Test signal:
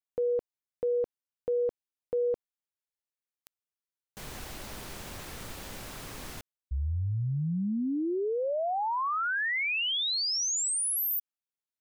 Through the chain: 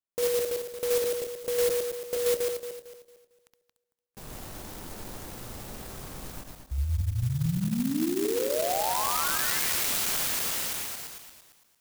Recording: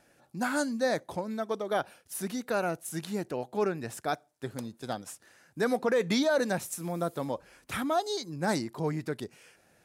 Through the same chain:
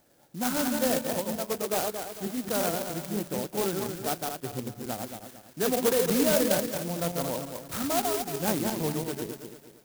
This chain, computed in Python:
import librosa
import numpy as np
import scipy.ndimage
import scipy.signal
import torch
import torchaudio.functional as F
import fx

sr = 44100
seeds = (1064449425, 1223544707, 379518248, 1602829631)

y = fx.reverse_delay_fb(x, sr, ms=113, feedback_pct=59, wet_db=-3)
y = scipy.signal.sosfilt(scipy.signal.bessel(4, 6900.0, 'lowpass', norm='mag', fs=sr, output='sos'), y)
y = fx.clock_jitter(y, sr, seeds[0], jitter_ms=0.13)